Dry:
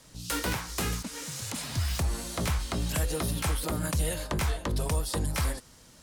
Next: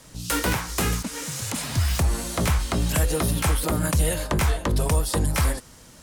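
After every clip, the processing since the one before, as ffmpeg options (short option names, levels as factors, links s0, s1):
-af "equalizer=f=4300:w=1.3:g=-3,volume=2.24"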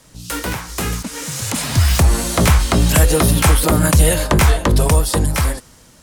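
-af "dynaudnorm=f=300:g=9:m=3.76"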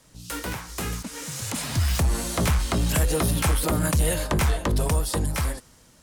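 -af "asoftclip=type=tanh:threshold=0.501,volume=0.398"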